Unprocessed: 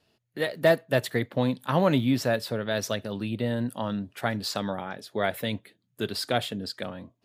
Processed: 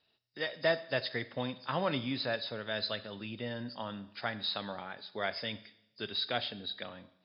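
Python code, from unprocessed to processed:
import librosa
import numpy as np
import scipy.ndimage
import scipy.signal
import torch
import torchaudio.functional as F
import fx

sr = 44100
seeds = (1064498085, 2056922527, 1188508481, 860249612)

y = fx.freq_compress(x, sr, knee_hz=3600.0, ratio=4.0)
y = fx.tilt_shelf(y, sr, db=-5.0, hz=730.0)
y = fx.rev_schroeder(y, sr, rt60_s=0.8, comb_ms=29, drr_db=14.5)
y = y * librosa.db_to_amplitude(-8.5)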